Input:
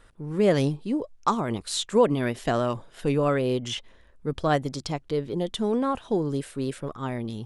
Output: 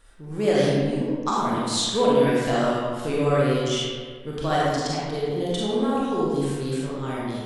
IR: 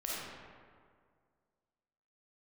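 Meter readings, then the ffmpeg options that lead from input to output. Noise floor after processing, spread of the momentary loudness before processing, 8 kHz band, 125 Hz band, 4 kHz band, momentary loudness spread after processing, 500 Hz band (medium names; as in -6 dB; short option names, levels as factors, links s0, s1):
-38 dBFS, 10 LU, +5.0 dB, +2.0 dB, +5.5 dB, 9 LU, +3.0 dB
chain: -filter_complex "[0:a]highshelf=f=3800:g=9.5,acrossover=split=9000[s0][s1];[s1]acompressor=threshold=0.00398:ratio=4:attack=1:release=60[s2];[s0][s2]amix=inputs=2:normalize=0[s3];[1:a]atrim=start_sample=2205,asetrate=52920,aresample=44100[s4];[s3][s4]afir=irnorm=-1:irlink=0"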